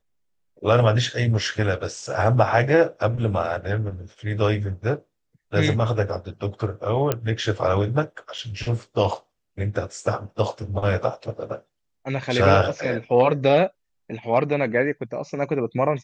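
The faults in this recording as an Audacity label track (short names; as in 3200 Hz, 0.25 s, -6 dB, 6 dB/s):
7.120000	7.120000	pop -7 dBFS
8.380000	8.380000	gap 5 ms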